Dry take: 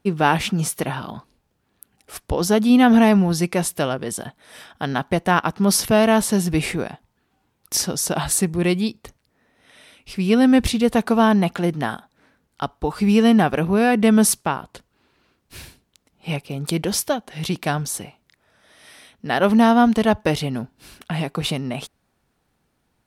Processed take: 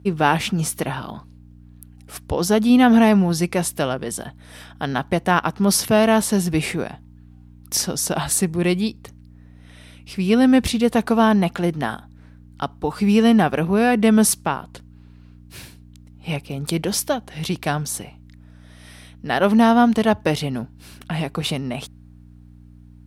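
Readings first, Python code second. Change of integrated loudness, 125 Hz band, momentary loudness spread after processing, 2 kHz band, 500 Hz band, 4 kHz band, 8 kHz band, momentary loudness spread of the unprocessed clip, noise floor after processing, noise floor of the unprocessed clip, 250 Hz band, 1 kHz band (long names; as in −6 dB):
0.0 dB, 0.0 dB, 15 LU, 0.0 dB, 0.0 dB, 0.0 dB, 0.0 dB, 15 LU, −46 dBFS, −70 dBFS, 0.0 dB, 0.0 dB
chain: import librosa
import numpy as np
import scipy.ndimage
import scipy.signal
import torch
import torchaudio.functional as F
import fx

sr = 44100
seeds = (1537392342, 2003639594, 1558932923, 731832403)

y = fx.add_hum(x, sr, base_hz=60, snr_db=22)
y = scipy.signal.sosfilt(scipy.signal.butter(2, 66.0, 'highpass', fs=sr, output='sos'), y)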